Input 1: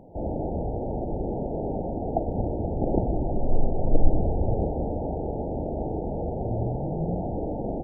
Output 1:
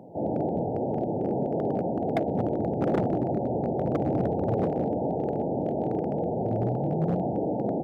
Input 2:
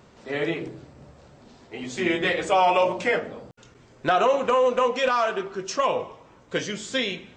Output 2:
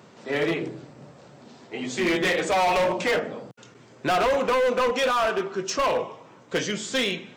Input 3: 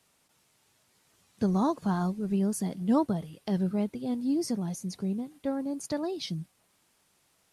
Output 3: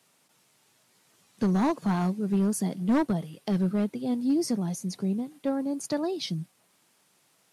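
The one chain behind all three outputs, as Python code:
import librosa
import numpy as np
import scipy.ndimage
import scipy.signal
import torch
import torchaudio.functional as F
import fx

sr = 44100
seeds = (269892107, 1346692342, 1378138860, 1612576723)

y = scipy.signal.sosfilt(scipy.signal.butter(4, 120.0, 'highpass', fs=sr, output='sos'), x)
y = np.clip(10.0 ** (22.0 / 20.0) * y, -1.0, 1.0) / 10.0 ** (22.0 / 20.0)
y = y * librosa.db_to_amplitude(3.0)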